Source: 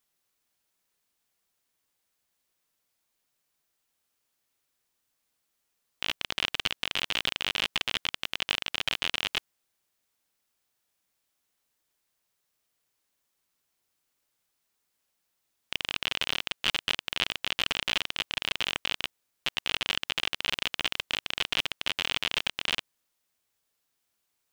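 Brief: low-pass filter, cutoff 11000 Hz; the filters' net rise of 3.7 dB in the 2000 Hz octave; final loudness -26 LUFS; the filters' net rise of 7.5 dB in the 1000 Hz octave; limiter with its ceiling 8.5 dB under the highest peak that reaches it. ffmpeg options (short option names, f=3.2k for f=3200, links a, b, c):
-af "lowpass=11k,equalizer=f=1k:t=o:g=8.5,equalizer=f=2k:t=o:g=3,volume=4dB,alimiter=limit=-6.5dB:level=0:latency=1"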